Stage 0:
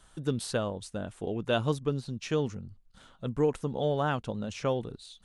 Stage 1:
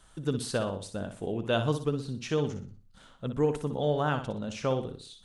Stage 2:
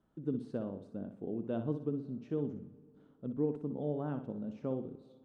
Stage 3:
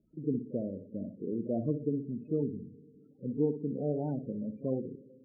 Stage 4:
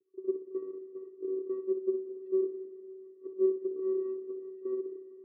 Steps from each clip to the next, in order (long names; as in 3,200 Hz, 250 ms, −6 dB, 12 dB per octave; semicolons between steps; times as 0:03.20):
flutter between parallel walls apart 10.4 metres, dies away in 0.4 s
resonant band-pass 260 Hz, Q 1.5; on a send at −21 dB: convolution reverb RT60 2.4 s, pre-delay 120 ms; on the sum: level −2 dB
spectral peaks only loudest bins 16; echo ahead of the sound 39 ms −18 dB; level +3.5 dB
channel vocoder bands 8, square 379 Hz; comb and all-pass reverb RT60 2.8 s, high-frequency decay 0.8×, pre-delay 105 ms, DRR 15.5 dB